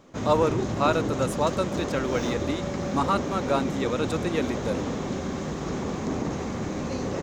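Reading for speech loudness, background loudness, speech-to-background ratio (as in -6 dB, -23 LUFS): -28.0 LUFS, -30.0 LUFS, 2.0 dB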